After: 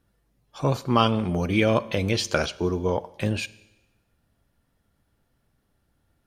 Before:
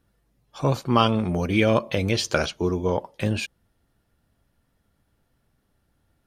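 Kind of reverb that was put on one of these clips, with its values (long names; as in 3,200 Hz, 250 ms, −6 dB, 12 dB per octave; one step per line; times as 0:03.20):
four-comb reverb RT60 1 s, combs from 31 ms, DRR 18.5 dB
level −1 dB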